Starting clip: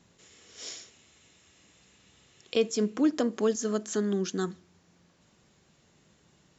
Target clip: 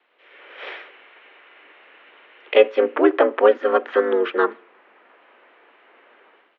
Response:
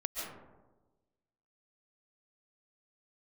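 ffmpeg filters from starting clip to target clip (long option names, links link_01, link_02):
-filter_complex "[0:a]tiltshelf=frequency=930:gain=-5.5,acrossover=split=2400[link_01][link_02];[link_01]dynaudnorm=framelen=120:gausssize=5:maxgain=15dB[link_03];[link_03][link_02]amix=inputs=2:normalize=0,highpass=frequency=320:width_type=q:width=0.5412,highpass=frequency=320:width_type=q:width=1.307,lowpass=frequency=3000:width_type=q:width=0.5176,lowpass=frequency=3000:width_type=q:width=0.7071,lowpass=frequency=3000:width_type=q:width=1.932,afreqshift=89,asplit=2[link_04][link_05];[link_05]asetrate=35002,aresample=44100,atempo=1.25992,volume=-2dB[link_06];[link_04][link_06]amix=inputs=2:normalize=0"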